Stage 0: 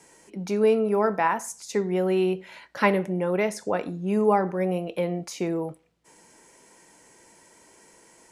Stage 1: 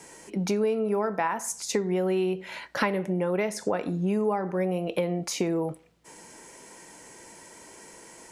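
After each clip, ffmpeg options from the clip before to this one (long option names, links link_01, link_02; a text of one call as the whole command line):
ffmpeg -i in.wav -af "acompressor=threshold=-30dB:ratio=6,volume=6.5dB" out.wav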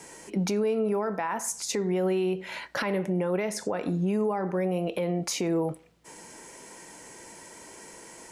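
ffmpeg -i in.wav -af "alimiter=limit=-20.5dB:level=0:latency=1:release=50,volume=1.5dB" out.wav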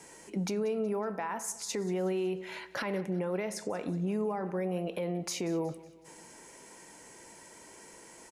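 ffmpeg -i in.wav -af "aecho=1:1:185|370|555|740:0.112|0.0539|0.0259|0.0124,volume=-5.5dB" out.wav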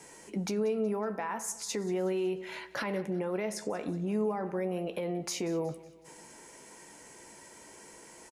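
ffmpeg -i in.wav -filter_complex "[0:a]asplit=2[link_01][link_02];[link_02]adelay=14,volume=-11dB[link_03];[link_01][link_03]amix=inputs=2:normalize=0" out.wav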